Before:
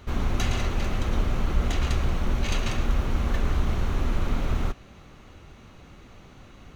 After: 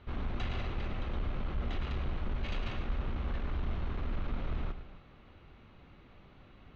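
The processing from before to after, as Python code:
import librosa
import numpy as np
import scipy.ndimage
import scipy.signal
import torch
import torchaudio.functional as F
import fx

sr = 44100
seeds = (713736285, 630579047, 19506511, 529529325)

y = scipy.signal.sosfilt(scipy.signal.butter(4, 3900.0, 'lowpass', fs=sr, output='sos'), x)
y = 10.0 ** (-18.5 / 20.0) * np.tanh(y / 10.0 ** (-18.5 / 20.0))
y = fx.echo_multitap(y, sr, ms=(104, 260), db=(-12.0, -15.5))
y = F.gain(torch.from_numpy(y), -8.5).numpy()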